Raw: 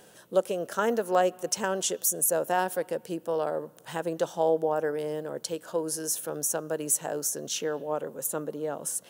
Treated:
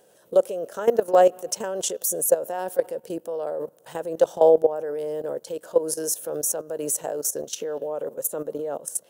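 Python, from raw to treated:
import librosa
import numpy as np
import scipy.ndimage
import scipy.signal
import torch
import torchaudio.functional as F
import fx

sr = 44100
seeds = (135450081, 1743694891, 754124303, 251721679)

y = fx.peak_eq(x, sr, hz=530.0, db=11.0, octaves=1.2)
y = fx.level_steps(y, sr, step_db=15)
y = fx.high_shelf(y, sr, hz=5600.0, db=6.5)
y = y * 10.0 ** (1.5 / 20.0)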